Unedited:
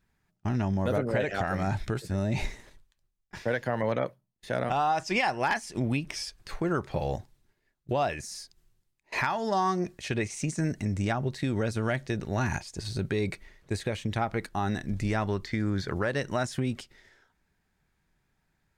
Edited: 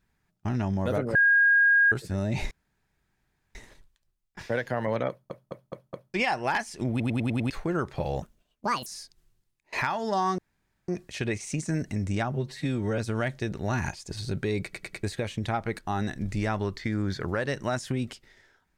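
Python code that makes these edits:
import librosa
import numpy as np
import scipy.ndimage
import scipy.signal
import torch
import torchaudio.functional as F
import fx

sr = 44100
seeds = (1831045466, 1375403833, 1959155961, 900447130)

y = fx.edit(x, sr, fx.bleep(start_s=1.15, length_s=0.77, hz=1630.0, db=-16.5),
    fx.insert_room_tone(at_s=2.51, length_s=1.04),
    fx.stutter_over(start_s=4.05, slice_s=0.21, count=5),
    fx.stutter_over(start_s=5.86, slice_s=0.1, count=6),
    fx.speed_span(start_s=7.18, length_s=1.08, speed=1.68),
    fx.insert_room_tone(at_s=9.78, length_s=0.5),
    fx.stretch_span(start_s=11.22, length_s=0.44, factor=1.5),
    fx.stutter_over(start_s=13.31, slice_s=0.1, count=4), tone=tone)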